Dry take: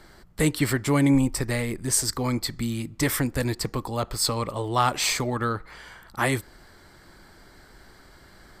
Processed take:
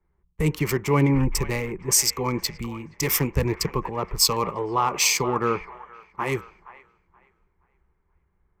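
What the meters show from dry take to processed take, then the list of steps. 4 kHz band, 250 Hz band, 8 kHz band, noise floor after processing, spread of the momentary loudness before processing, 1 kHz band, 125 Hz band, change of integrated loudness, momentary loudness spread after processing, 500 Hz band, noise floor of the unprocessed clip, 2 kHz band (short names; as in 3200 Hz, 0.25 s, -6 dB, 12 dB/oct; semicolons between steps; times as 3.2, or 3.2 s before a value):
+3.5 dB, -2.0 dB, +4.0 dB, -70 dBFS, 8 LU, +2.0 dB, +1.0 dB, +1.5 dB, 11 LU, +2.5 dB, -52 dBFS, 0.0 dB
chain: Wiener smoothing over 9 samples; ripple EQ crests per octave 0.78, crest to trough 10 dB; limiter -16.5 dBFS, peak gain reduction 8 dB; on a send: band-limited delay 0.474 s, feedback 47%, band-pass 1300 Hz, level -8 dB; on the sum: three-band expander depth 100%; gain +2 dB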